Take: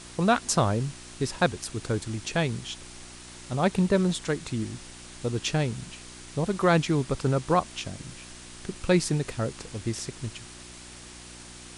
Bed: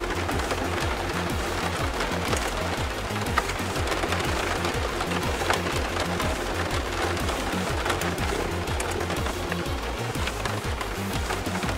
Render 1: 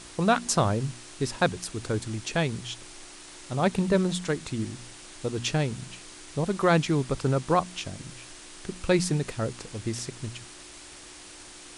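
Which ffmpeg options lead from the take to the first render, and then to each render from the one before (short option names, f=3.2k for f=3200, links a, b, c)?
-af "bandreject=f=60:t=h:w=4,bandreject=f=120:t=h:w=4,bandreject=f=180:t=h:w=4,bandreject=f=240:t=h:w=4"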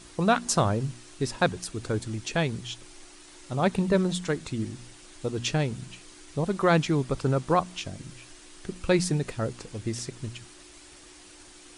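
-af "afftdn=nr=6:nf=-46"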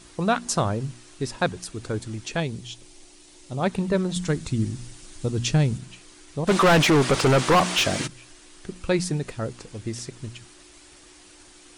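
-filter_complex "[0:a]asettb=1/sr,asplit=3[a][b][c];[a]atrim=end=2.404[d];[b]atrim=start=2.4:end=3.61,asetpts=PTS-STARTPTS,afade=t=in:d=0.004:c=qsin,afade=t=out:st=1.206:d=0.004:c=qsin,equalizer=f=1.4k:w=1.1:g=-8[e];[c]atrim=start=3.606[f];[d][e]acrossfade=d=0.004:c1=hsin:c2=qsin[g];[g][f]acrossfade=d=0.004:c1=qsin:c2=hsin,asettb=1/sr,asplit=3[h][i][j];[h]atrim=end=4.164[k];[i]atrim=start=4.16:end=5.78,asetpts=PTS-STARTPTS,afade=t=in:d=0.004:c=qsin,afade=t=out:st=1.616:d=0.004:c=qsin,bass=f=250:g=9,treble=f=4k:g=5[l];[j]atrim=start=5.776[m];[k][l]acrossfade=d=0.004:c1=hsin:c2=qsin[n];[n][m]acrossfade=d=0.004:c1=qsin:c2=hsin,asplit=3[o][p][q];[o]afade=t=out:st=6.47:d=0.02[r];[p]asplit=2[s][t];[t]highpass=f=720:p=1,volume=31dB,asoftclip=type=tanh:threshold=-10dB[u];[s][u]amix=inputs=2:normalize=0,lowpass=f=4.2k:p=1,volume=-6dB,afade=t=in:st=6.47:d=0.02,afade=t=out:st=8.06:d=0.02[v];[q]afade=t=in:st=8.06:d=0.02[w];[r][v][w]amix=inputs=3:normalize=0"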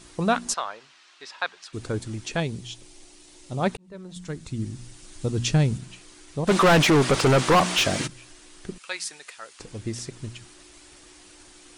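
-filter_complex "[0:a]asplit=3[a][b][c];[a]afade=t=out:st=0.53:d=0.02[d];[b]asuperpass=centerf=2100:order=4:qfactor=0.57,afade=t=in:st=0.53:d=0.02,afade=t=out:st=1.72:d=0.02[e];[c]afade=t=in:st=1.72:d=0.02[f];[d][e][f]amix=inputs=3:normalize=0,asettb=1/sr,asplit=3[g][h][i];[g]atrim=end=8.784[j];[h]atrim=start=8.78:end=9.6,asetpts=PTS-STARTPTS,afade=t=in:d=0.004:c=qsin,afade=t=out:st=0.816:d=0.004:c=qsin,highpass=1.3k[k];[i]atrim=start=9.596[l];[j][k]acrossfade=d=0.004:c1=hsin:c2=qsin[m];[m][l]acrossfade=d=0.004:c1=qsin:c2=hsin,asplit=2[n][o];[n]atrim=end=3.77,asetpts=PTS-STARTPTS,afade=t=out:st=3.766:d=0.004:c=hsin[p];[o]atrim=start=3.77,asetpts=PTS-STARTPTS,afade=t=in:d=1.57[q];[p][q]concat=n=2:v=0:a=1"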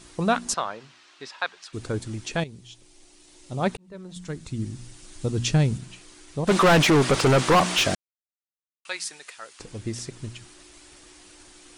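-filter_complex "[0:a]asettb=1/sr,asplit=3[a][b][c];[a]atrim=end=0.534[d];[b]atrim=start=0.53:end=1.28,asetpts=PTS-STARTPTS,afade=t=in:d=0.004:c=qsin,afade=t=out:st=0.746:d=0.004:c=qsin,equalizer=f=140:w=0.46:g=14[e];[c]atrim=start=1.276[f];[d][e]acrossfade=d=0.004:c1=hsin:c2=qsin[g];[g][f]acrossfade=d=0.004:c1=qsin:c2=hsin,asplit=4[h][i][j][k];[h]atrim=end=2.44,asetpts=PTS-STARTPTS,afade=t=out:st=2.436:d=0.004:c=hsin:silence=0.251189[l];[i]atrim=start=2.44:end=7.95,asetpts=PTS-STARTPTS,afade=t=in:d=1.27:silence=0.251189,afade=t=out:st=5.506:d=0.004:c=hsin[m];[j]atrim=start=7.95:end=8.85,asetpts=PTS-STARTPTS,volume=0[n];[k]atrim=start=8.85,asetpts=PTS-STARTPTS,afade=t=in:d=0.004:c=hsin[o];[l][m][n][o]concat=n=4:v=0:a=1"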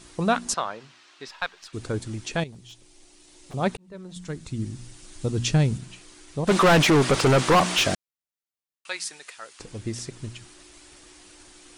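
-filter_complex "[0:a]asettb=1/sr,asplit=3[a][b][c];[a]atrim=end=1.284[d];[b]atrim=start=1.28:end=1.69,asetpts=PTS-STARTPTS,afade=t=in:d=0.004:c=qsin,afade=t=out:st=0.406:d=0.004:c=qsin,aeval=exprs='if(lt(val(0),0),0.708*val(0),val(0))':c=same[e];[c]atrim=start=1.686[f];[d][e]acrossfade=d=0.004:c1=hsin:c2=qsin[g];[g][f]acrossfade=d=0.004:c1=qsin:c2=hsin,asettb=1/sr,asplit=3[h][i][j];[h]atrim=end=2.524[k];[i]atrim=start=2.52:end=3.54,asetpts=PTS-STARTPTS,afade=t=in:d=0.004:c=qsin,afade=t=out:st=1.016:d=0.004:c=qsin,aeval=exprs='0.0133*(abs(mod(val(0)/0.0133+3,4)-2)-1)':c=same[l];[j]atrim=start=3.536[m];[k][l]acrossfade=d=0.004:c1=hsin:c2=qsin[n];[n][m]acrossfade=d=0.004:c1=qsin:c2=hsin"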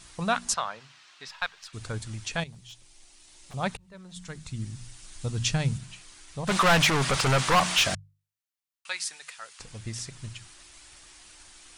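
-af "equalizer=f=340:w=0.96:g=-13,bandreject=f=50:t=h:w=6,bandreject=f=100:t=h:w=6,bandreject=f=150:t=h:w=6"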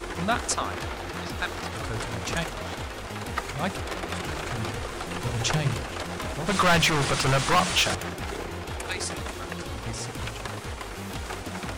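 -filter_complex "[1:a]volume=-6.5dB[a];[0:a][a]amix=inputs=2:normalize=0"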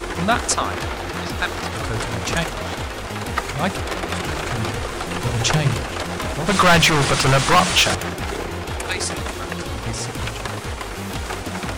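-af "volume=7dB"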